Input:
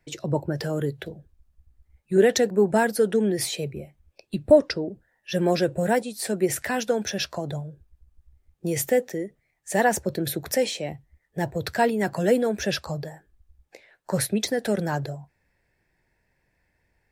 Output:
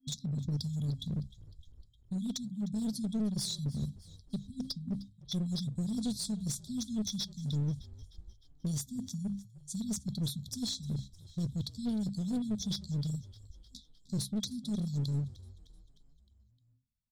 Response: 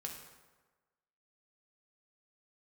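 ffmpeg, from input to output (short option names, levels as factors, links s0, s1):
-filter_complex "[0:a]lowpass=8200,asplit=2[s0][s1];[s1]acontrast=75,volume=0.891[s2];[s0][s2]amix=inputs=2:normalize=0,bandreject=f=66.15:t=h:w=4,bandreject=f=132.3:t=h:w=4,bandreject=f=198.45:t=h:w=4,bandreject=f=264.6:t=h:w=4,bandreject=f=330.75:t=h:w=4,bandreject=f=396.9:t=h:w=4,bandreject=f=463.05:t=h:w=4,bandreject=f=529.2:t=h:w=4,bandreject=f=595.35:t=h:w=4,bandreject=f=661.5:t=h:w=4,bandreject=f=727.65:t=h:w=4,bandreject=f=793.8:t=h:w=4,bandreject=f=859.95:t=h:w=4,bandreject=f=926.1:t=h:w=4,bandreject=f=992.25:t=h:w=4,bandreject=f=1058.4:t=h:w=4,bandreject=f=1124.55:t=h:w=4,bandreject=f=1190.7:t=h:w=4,bandreject=f=1256.85:t=h:w=4,bandreject=f=1323:t=h:w=4,bandreject=f=1389.15:t=h:w=4,bandreject=f=1455.3:t=h:w=4,bandreject=f=1521.45:t=h:w=4,bandreject=f=1587.6:t=h:w=4,bandreject=f=1653.75:t=h:w=4,bandreject=f=1719.9:t=h:w=4,bandreject=f=1786.05:t=h:w=4,bandreject=f=1852.2:t=h:w=4,bandreject=f=1918.35:t=h:w=4,bandreject=f=1984.5:t=h:w=4,bandreject=f=2050.65:t=h:w=4,agate=range=0.0224:threshold=0.02:ratio=3:detection=peak,equalizer=f=830:w=0.43:g=10.5,areverse,acompressor=threshold=0.0501:ratio=5,areverse,afftfilt=real='re*(1-between(b*sr/4096,260,3300))':imag='im*(1-between(b*sr/4096,260,3300))':win_size=4096:overlap=0.75,alimiter=level_in=1.68:limit=0.0631:level=0:latency=1:release=463,volume=0.596,aeval=exprs='clip(val(0),-1,0.0178)':c=same,asplit=6[s3][s4][s5][s6][s7][s8];[s4]adelay=306,afreqshift=-52,volume=0.106[s9];[s5]adelay=612,afreqshift=-104,volume=0.0624[s10];[s6]adelay=918,afreqshift=-156,volume=0.0367[s11];[s7]adelay=1224,afreqshift=-208,volume=0.0219[s12];[s8]adelay=1530,afreqshift=-260,volume=0.0129[s13];[s3][s9][s10][s11][s12][s13]amix=inputs=6:normalize=0,volume=1.5"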